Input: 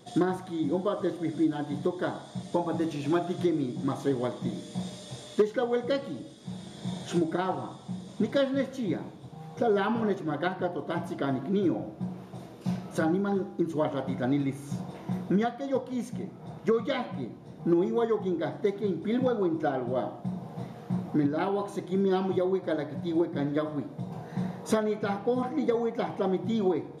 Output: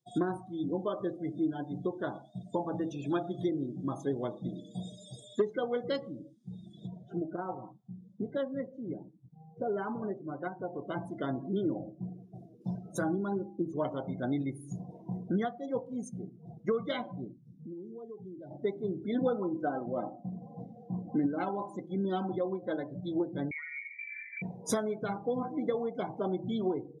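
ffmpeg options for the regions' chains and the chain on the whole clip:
-filter_complex "[0:a]asettb=1/sr,asplit=3[s0][s1][s2];[s0]atrim=end=6.874[s3];[s1]atrim=start=6.87:end=10.73,asetpts=PTS-STARTPTS,afade=t=in:d=0.004:c=qsin,afade=t=out:st=3.856:d=0.004:c=qsin,lowpass=f=1100:p=1,lowshelf=f=430:g=-4.5[s4];[s2]atrim=start=10.726[s5];[s3][s4]acrossfade=d=0.004:c1=hsin:c2=qsin[s6];[s6][s5]acrossfade=d=0.004:c1=qsin:c2=hsin,asettb=1/sr,asplit=3[s7][s8][s9];[s7]atrim=end=17.324[s10];[s8]atrim=start=17.32:end=18.51,asetpts=PTS-STARTPTS,afade=t=in:d=0.004:c=qsin,afade=t=out:st=1.186:d=0.004:c=qsin,equalizer=f=1000:w=0.4:g=-5.5,acompressor=threshold=0.0112:ratio=3:attack=3.2:release=140:knee=1:detection=peak[s11];[s9]atrim=start=18.506[s12];[s10][s11]acrossfade=d=0.004:c1=hsin:c2=qsin[s13];[s13][s12]acrossfade=d=0.004:c1=qsin:c2=hsin,asettb=1/sr,asplit=3[s14][s15][s16];[s14]atrim=end=19.154[s17];[s15]atrim=start=19.15:end=22.87,asetpts=PTS-STARTPTS,afade=t=in:d=0.004:c=qsin,afade=t=out:st=3.716:d=0.004:c=qsin,highshelf=f=8900:g=-9.5,aecho=1:1:3.9:0.38,atrim=end_sample=164052[s18];[s16]atrim=start=22.866[s19];[s17][s18]acrossfade=d=0.004:c1=hsin:c2=qsin[s20];[s20][s19]acrossfade=d=0.004:c1=qsin:c2=hsin,asettb=1/sr,asplit=3[s21][s22][s23];[s21]atrim=end=23.514[s24];[s22]atrim=start=23.51:end=24.42,asetpts=PTS-STARTPTS,afade=t=in:d=0.004:c=qsin,afade=t=out:st=0.906:d=0.004:c=qsin,acompressor=threshold=0.02:ratio=6:attack=3.2:release=140:knee=1:detection=peak,lowpass=f=2100:t=q:w=0.5098,lowpass=f=2100:t=q:w=0.6013,lowpass=f=2100:t=q:w=0.9,lowpass=f=2100:t=q:w=2.563,afreqshift=-2500[s25];[s23]atrim=start=24.416[s26];[s24][s25]acrossfade=d=0.004:c1=hsin:c2=qsin[s27];[s27][s26]acrossfade=d=0.004:c1=qsin:c2=hsin,aemphasis=mode=production:type=50kf,afftdn=nr=33:nf=-37,equalizer=f=5800:w=2.1:g=5,volume=0.562"

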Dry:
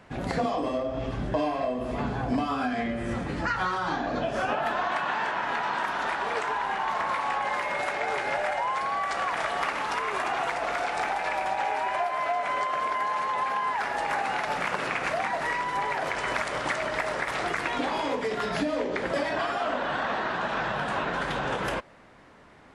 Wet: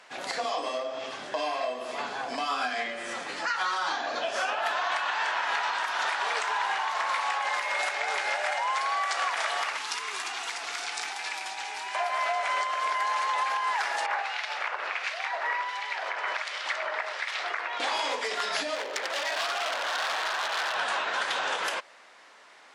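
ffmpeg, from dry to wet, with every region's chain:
-filter_complex "[0:a]asettb=1/sr,asplit=3[s0][s1][s2];[s0]atrim=end=9.774[s3];[s1]atrim=start=9.77:end=11.95,asetpts=PTS-STARTPTS,afade=t=in:d=0.004:c=qsin,afade=t=out:st=2.176:d=0.004:c=qsin,acrossover=split=440|3000[s4][s5][s6];[s5]acompressor=threshold=0.0158:ratio=4:attack=3.2:release=140:knee=2.83:detection=peak[s7];[s4][s7][s6]amix=inputs=3:normalize=0,equalizer=f=580:w=2.8:g=-11.5[s8];[s2]atrim=start=11.946[s9];[s3][s8]acrossfade=d=0.004:c1=hsin:c2=qsin[s10];[s10][s9]acrossfade=d=0.004:c1=qsin:c2=hsin,asettb=1/sr,asplit=3[s11][s12][s13];[s11]atrim=end=14.064[s14];[s12]atrim=start=14.06:end=17.8,asetpts=PTS-STARTPTS,afade=t=in:d=0.004:c=qsin,afade=t=out:st=3.736:d=0.004:c=qsin,acrossover=split=330 4900:gain=0.112 1 0.158[s15][s16][s17];[s15][s16][s17]amix=inputs=3:normalize=0,acrossover=split=2000[s18][s19];[s18]aeval=exprs='val(0)*(1-0.7/2+0.7/2*cos(2*PI*1.4*n/s))':c=same[s20];[s19]aeval=exprs='val(0)*(1-0.7/2-0.7/2*cos(2*PI*1.4*n/s))':c=same[s21];[s20][s21]amix=inputs=2:normalize=0[s22];[s13]atrim=start=17.796[s23];[s14][s22]acrossfade=d=0.004:c1=hsin:c2=qsin[s24];[s24][s23]acrossfade=d=0.004:c1=qsin:c2=hsin,asettb=1/sr,asplit=3[s25][s26][s27];[s25]atrim=end=18.754[s28];[s26]atrim=start=18.75:end=20.75,asetpts=PTS-STARTPTS,afade=t=in:d=0.004:c=qsin,afade=t=out:st=1.996:d=0.004:c=qsin,bass=f=250:g=-12,treble=f=4000:g=-10,aeval=exprs='0.0501*(abs(mod(val(0)/0.0501+3,4)-2)-1)':c=same[s29];[s27]atrim=start=20.746[s30];[s28][s29]acrossfade=d=0.004:c1=hsin:c2=qsin[s31];[s31][s30]acrossfade=d=0.004:c1=qsin:c2=hsin,highpass=620,alimiter=limit=0.0944:level=0:latency=1:release=166,equalizer=f=5600:t=o:w=2.3:g=9.5"

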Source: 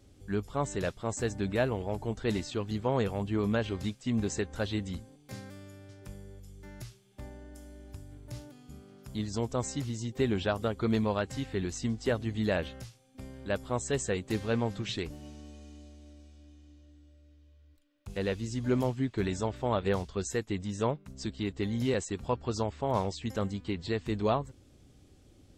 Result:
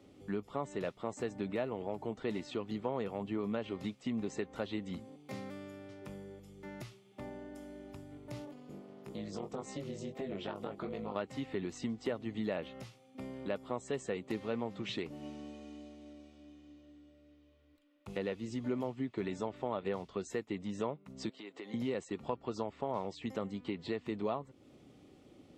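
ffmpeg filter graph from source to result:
-filter_complex "[0:a]asettb=1/sr,asplit=3[s0][s1][s2];[s0]atrim=end=8.454[s3];[s1]atrim=start=8.45:end=11.16,asetpts=PTS-STARTPTS,afade=t=in:d=0.004:c=qsin,afade=t=out:st=2.706:d=0.004:c=qsin,acompressor=threshold=0.0178:ratio=2.5:attack=3.2:release=140:knee=1:detection=peak,tremolo=f=270:d=0.947,asplit=2[s4][s5];[s5]adelay=20,volume=0.501[s6];[s4][s6]amix=inputs=2:normalize=0,atrim=end_sample=119511[s7];[s2]atrim=start=11.156[s8];[s3][s7]acrossfade=d=0.004:c1=hsin:c2=qsin[s9];[s9][s8]acrossfade=d=0.004:c1=qsin:c2=hsin,asettb=1/sr,asplit=3[s10][s11][s12];[s10]atrim=end=21.294[s13];[s11]atrim=start=21.29:end=21.74,asetpts=PTS-STARTPTS,afade=t=in:d=0.004:c=qsin,afade=t=out:st=0.446:d=0.004:c=qsin,highpass=430,acompressor=threshold=0.00562:ratio=10:attack=3.2:release=140:knee=1:detection=peak[s14];[s12]atrim=start=21.736[s15];[s13][s14]acrossfade=d=0.004:c1=hsin:c2=qsin[s16];[s16][s15]acrossfade=d=0.004:c1=qsin:c2=hsin,acrossover=split=150 3300:gain=0.1 1 0.251[s17][s18][s19];[s17][s18][s19]amix=inputs=3:normalize=0,bandreject=f=1600:w=6.5,acompressor=threshold=0.00794:ratio=2.5,volume=1.68"

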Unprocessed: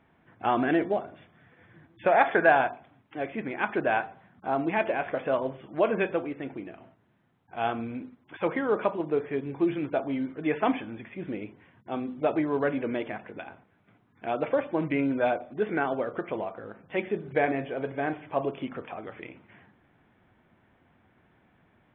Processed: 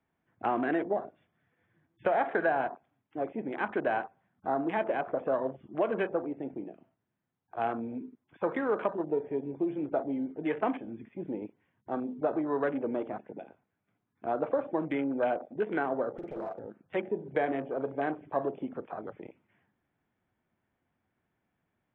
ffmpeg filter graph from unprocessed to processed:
-filter_complex "[0:a]asettb=1/sr,asplit=3[s0][s1][s2];[s0]atrim=end=16.174[s3];[s1]atrim=start=16.17:end=16.59,asetpts=PTS-STARTPTS,afade=t=in:d=0.004:c=qsin,afade=t=out:st=0.416:d=0.004:c=qsin,acompressor=threshold=0.0282:ratio=12:attack=3.2:release=140:knee=1:detection=peak,aeval=exprs='0.0251*(abs(mod(val(0)/0.0251+3,4)-2)-1)':c=same,asplit=2[s4][s5];[s5]adelay=47,volume=0.562[s6];[s4][s6]amix=inputs=2:normalize=0,atrim=end_sample=18522[s7];[s2]atrim=start=16.586[s8];[s3][s7]acrossfade=d=0.004:c1=hsin:c2=qsin[s9];[s9][s8]acrossfade=d=0.004:c1=qsin:c2=hsin,afwtdn=0.0178,acrossover=split=190|560|1900[s10][s11][s12][s13];[s10]acompressor=threshold=0.00224:ratio=4[s14];[s11]acompressor=threshold=0.0316:ratio=4[s15];[s12]acompressor=threshold=0.0316:ratio=4[s16];[s13]acompressor=threshold=0.00282:ratio=4[s17];[s14][s15][s16][s17]amix=inputs=4:normalize=0"

